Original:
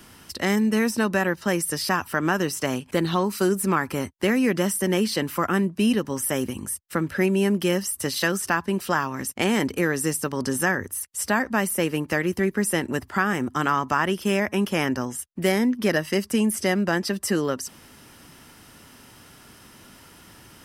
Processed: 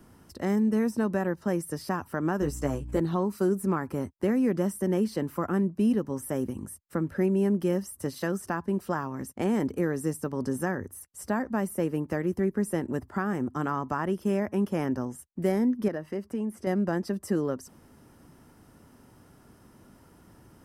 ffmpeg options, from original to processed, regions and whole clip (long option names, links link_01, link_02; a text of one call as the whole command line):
ffmpeg -i in.wav -filter_complex "[0:a]asettb=1/sr,asplit=3[link_01][link_02][link_03];[link_01]atrim=end=2.414[link_04];[link_02]atrim=start=2.41:end=3,asetpts=PTS-STARTPTS,afade=type=in:duration=0.004:curve=qsin,afade=type=out:start_time=0.586:duration=0.004:curve=qsin,aeval=exprs='val(0)+0.0158*(sin(2*PI*60*n/s)+sin(2*PI*2*60*n/s)/2+sin(2*PI*3*60*n/s)/3+sin(2*PI*4*60*n/s)/4+sin(2*PI*5*60*n/s)/5)':channel_layout=same,equalizer=frequency=7500:width_type=o:width=0.24:gain=7,asplit=2[link_05][link_06];[link_06]adelay=14,volume=-5.5dB[link_07];[link_05][link_07]amix=inputs=2:normalize=0,atrim=end_sample=26019[link_08];[link_03]atrim=start=2.996[link_09];[link_04][link_08]acrossfade=duration=0.004:curve1=hsin:curve2=qsin[link_10];[link_10][link_09]acrossfade=duration=0.004:curve1=qsin:curve2=hsin,asettb=1/sr,asplit=3[link_11][link_12][link_13];[link_11]atrim=end=15.884[link_14];[link_12]atrim=start=15.88:end=16.67,asetpts=PTS-STARTPTS,afade=type=in:duration=0.004:curve=qsin,afade=type=out:start_time=0.786:duration=0.004:curve=qsin,bass=frequency=250:gain=-4,treble=frequency=4000:gain=-9,acompressor=threshold=-31dB:ratio=1.5:attack=3.2:release=140:knee=1:detection=peak[link_15];[link_13]atrim=start=16.666[link_16];[link_14][link_15]acrossfade=duration=0.004:curve1=hsin:curve2=qsin[link_17];[link_17][link_16]acrossfade=duration=0.004:curve1=qsin:curve2=hsin,lowpass=frequency=4000:poles=1,equalizer=frequency=3000:width_type=o:width=2.3:gain=-14.5,volume=-2.5dB" out.wav